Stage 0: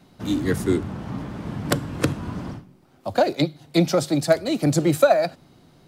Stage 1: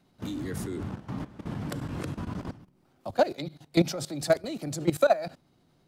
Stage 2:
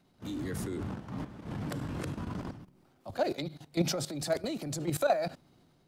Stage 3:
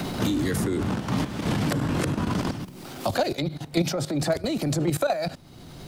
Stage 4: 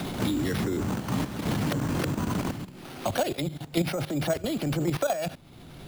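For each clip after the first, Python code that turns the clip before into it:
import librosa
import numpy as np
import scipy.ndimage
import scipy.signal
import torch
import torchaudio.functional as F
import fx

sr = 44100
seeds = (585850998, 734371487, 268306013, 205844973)

y1 = fx.level_steps(x, sr, step_db=16)
y1 = F.gain(torch.from_numpy(y1), -1.5).numpy()
y2 = fx.transient(y1, sr, attack_db=-8, sustain_db=4)
y2 = F.gain(torch.from_numpy(y2), -1.5).numpy()
y3 = fx.band_squash(y2, sr, depth_pct=100)
y3 = F.gain(torch.from_numpy(y3), 8.5).numpy()
y4 = np.repeat(y3[::6], 6)[:len(y3)]
y4 = F.gain(torch.from_numpy(y4), -2.5).numpy()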